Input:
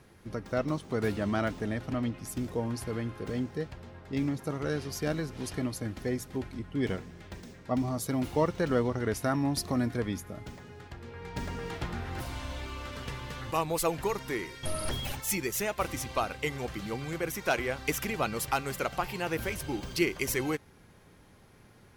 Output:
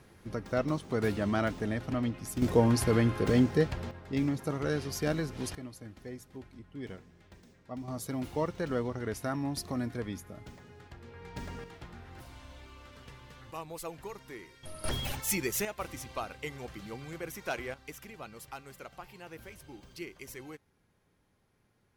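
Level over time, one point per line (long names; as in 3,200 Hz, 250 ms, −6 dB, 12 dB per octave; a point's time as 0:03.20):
0 dB
from 0:02.42 +8.5 dB
from 0:03.91 +0.5 dB
from 0:05.55 −11.5 dB
from 0:07.88 −5 dB
from 0:11.64 −12 dB
from 0:14.84 0 dB
from 0:15.65 −7 dB
from 0:17.74 −15 dB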